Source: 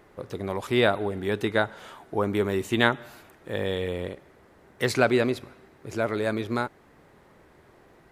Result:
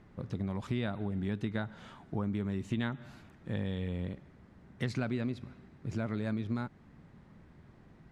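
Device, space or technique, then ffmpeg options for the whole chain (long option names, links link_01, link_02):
jukebox: -af "lowpass=6600,lowshelf=frequency=290:width_type=q:width=1.5:gain=10.5,acompressor=threshold=-23dB:ratio=5,volume=-7.5dB"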